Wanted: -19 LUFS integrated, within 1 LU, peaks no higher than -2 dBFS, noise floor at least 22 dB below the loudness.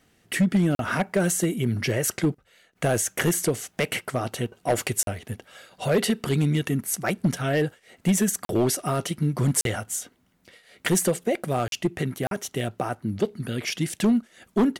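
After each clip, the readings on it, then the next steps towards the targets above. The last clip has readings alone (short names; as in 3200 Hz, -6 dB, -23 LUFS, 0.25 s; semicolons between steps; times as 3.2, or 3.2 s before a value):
clipped 1.2%; flat tops at -15.0 dBFS; dropouts 6; longest dropout 42 ms; loudness -25.5 LUFS; peak -15.0 dBFS; loudness target -19.0 LUFS
-> clip repair -15 dBFS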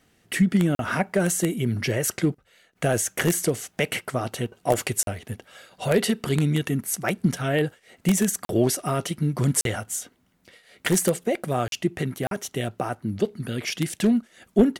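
clipped 0.0%; dropouts 6; longest dropout 42 ms
-> interpolate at 0.75/5.03/8.45/9.61/11.68/12.27, 42 ms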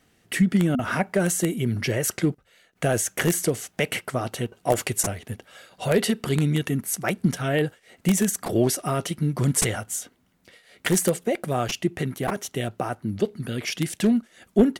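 dropouts 0; loudness -25.0 LUFS; peak -6.0 dBFS; loudness target -19.0 LUFS
-> gain +6 dB; limiter -2 dBFS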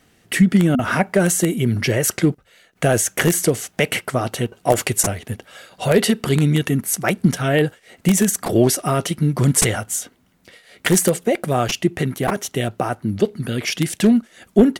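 loudness -19.0 LUFS; peak -2.0 dBFS; noise floor -58 dBFS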